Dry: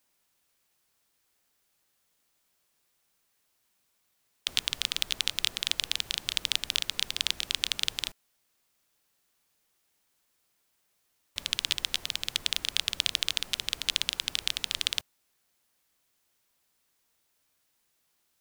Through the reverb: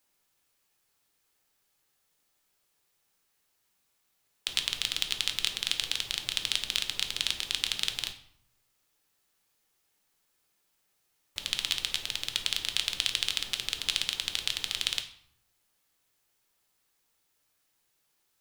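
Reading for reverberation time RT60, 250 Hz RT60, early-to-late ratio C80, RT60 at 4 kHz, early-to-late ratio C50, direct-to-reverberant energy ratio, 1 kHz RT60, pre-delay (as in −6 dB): 0.65 s, 0.90 s, 14.5 dB, 0.50 s, 11.5 dB, 6.0 dB, 0.70 s, 5 ms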